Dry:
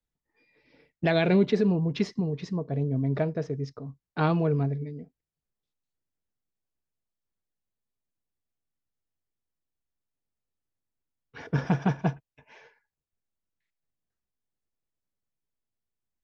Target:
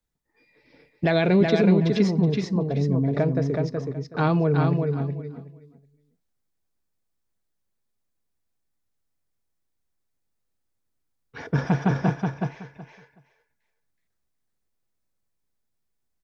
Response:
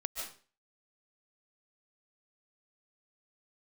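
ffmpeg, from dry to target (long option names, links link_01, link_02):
-filter_complex "[0:a]equalizer=frequency=2900:width=4:gain=-4,asplit=2[link_01][link_02];[link_02]alimiter=limit=-21dB:level=0:latency=1,volume=-2dB[link_03];[link_01][link_03]amix=inputs=2:normalize=0,aecho=1:1:373|746|1119:0.631|0.114|0.0204"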